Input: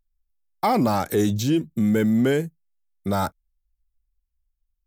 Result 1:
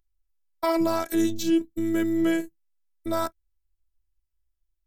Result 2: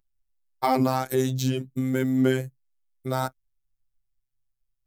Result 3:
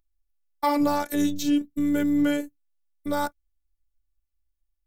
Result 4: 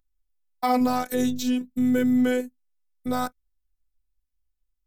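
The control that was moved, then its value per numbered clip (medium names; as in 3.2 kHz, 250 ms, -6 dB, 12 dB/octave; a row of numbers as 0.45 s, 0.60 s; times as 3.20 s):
robot voice, frequency: 330 Hz, 130 Hz, 290 Hz, 250 Hz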